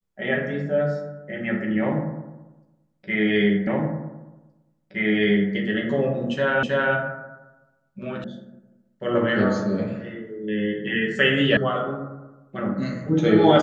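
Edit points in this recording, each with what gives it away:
0:03.67: the same again, the last 1.87 s
0:06.63: the same again, the last 0.32 s
0:08.24: cut off before it has died away
0:11.57: cut off before it has died away

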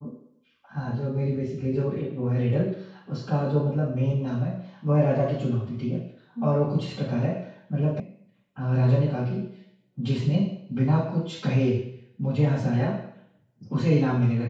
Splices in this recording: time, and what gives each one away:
0:08.00: cut off before it has died away

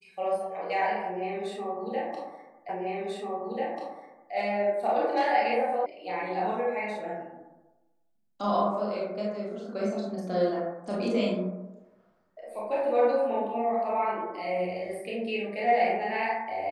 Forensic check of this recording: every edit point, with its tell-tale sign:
0:02.69: the same again, the last 1.64 s
0:05.86: cut off before it has died away

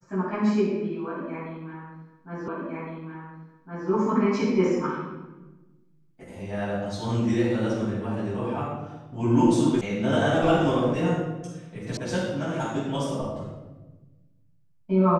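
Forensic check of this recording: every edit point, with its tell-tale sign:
0:02.48: the same again, the last 1.41 s
0:09.81: cut off before it has died away
0:11.97: cut off before it has died away

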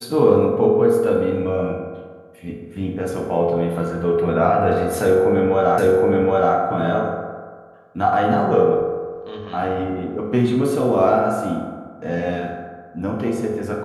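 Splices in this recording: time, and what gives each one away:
0:05.78: the same again, the last 0.77 s

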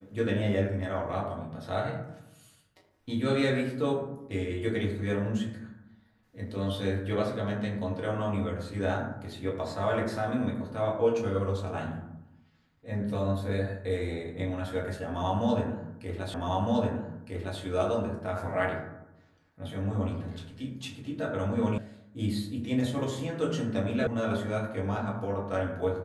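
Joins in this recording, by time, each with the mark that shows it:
0:16.34: the same again, the last 1.26 s
0:21.78: cut off before it has died away
0:24.07: cut off before it has died away

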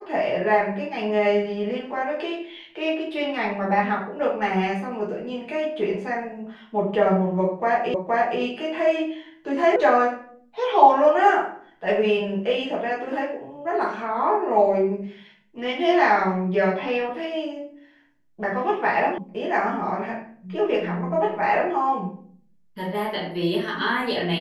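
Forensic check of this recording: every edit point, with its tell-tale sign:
0:07.94: the same again, the last 0.47 s
0:09.76: cut off before it has died away
0:19.18: cut off before it has died away

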